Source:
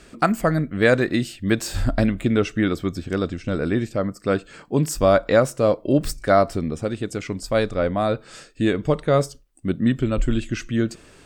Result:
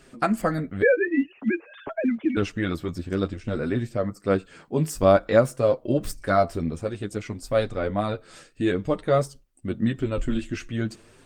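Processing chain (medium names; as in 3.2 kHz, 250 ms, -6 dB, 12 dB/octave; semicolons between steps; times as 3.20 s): 0.82–2.37 s: formants replaced by sine waves; flange 0.53 Hz, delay 7.2 ms, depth 5.4 ms, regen +20%; Opus 24 kbps 48 kHz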